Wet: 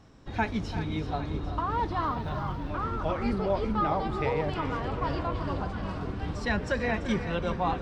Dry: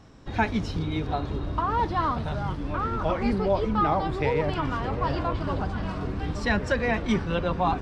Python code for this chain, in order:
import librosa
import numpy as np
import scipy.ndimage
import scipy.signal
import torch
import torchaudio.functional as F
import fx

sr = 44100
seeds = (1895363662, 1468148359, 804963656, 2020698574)

p1 = x + fx.echo_multitap(x, sr, ms=(338, 383, 798), db=(-14.0, -11.5, -17.0), dry=0)
p2 = fx.resample_linear(p1, sr, factor=2, at=(2.05, 2.71))
y = p2 * librosa.db_to_amplitude(-4.0)